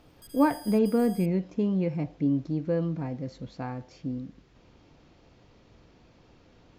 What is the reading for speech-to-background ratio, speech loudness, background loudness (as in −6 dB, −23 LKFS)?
19.0 dB, −28.5 LKFS, −47.5 LKFS